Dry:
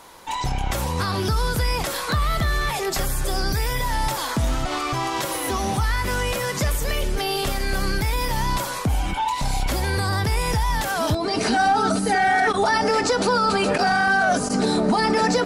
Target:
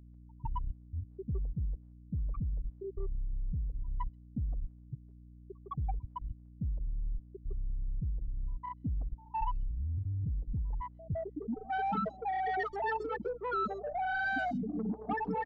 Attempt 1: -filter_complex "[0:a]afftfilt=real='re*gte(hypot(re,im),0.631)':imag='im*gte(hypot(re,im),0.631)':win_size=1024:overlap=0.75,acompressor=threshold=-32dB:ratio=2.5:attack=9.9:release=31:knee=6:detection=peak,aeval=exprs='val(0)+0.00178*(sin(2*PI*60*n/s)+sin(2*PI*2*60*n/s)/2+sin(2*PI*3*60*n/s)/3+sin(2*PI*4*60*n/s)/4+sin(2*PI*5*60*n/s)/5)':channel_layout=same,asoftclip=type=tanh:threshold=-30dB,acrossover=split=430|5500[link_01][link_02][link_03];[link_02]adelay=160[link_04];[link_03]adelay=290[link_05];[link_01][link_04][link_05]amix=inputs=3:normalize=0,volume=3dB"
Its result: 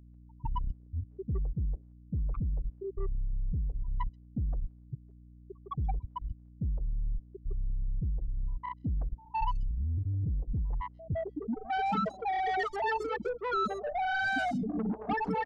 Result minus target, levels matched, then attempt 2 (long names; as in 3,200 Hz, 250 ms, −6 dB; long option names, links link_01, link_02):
downward compressor: peak gain reduction −5 dB
-filter_complex "[0:a]afftfilt=real='re*gte(hypot(re,im),0.631)':imag='im*gte(hypot(re,im),0.631)':win_size=1024:overlap=0.75,acompressor=threshold=-40.5dB:ratio=2.5:attack=9.9:release=31:knee=6:detection=peak,aeval=exprs='val(0)+0.00178*(sin(2*PI*60*n/s)+sin(2*PI*2*60*n/s)/2+sin(2*PI*3*60*n/s)/3+sin(2*PI*4*60*n/s)/4+sin(2*PI*5*60*n/s)/5)':channel_layout=same,asoftclip=type=tanh:threshold=-30dB,acrossover=split=430|5500[link_01][link_02][link_03];[link_02]adelay=160[link_04];[link_03]adelay=290[link_05];[link_01][link_04][link_05]amix=inputs=3:normalize=0,volume=3dB"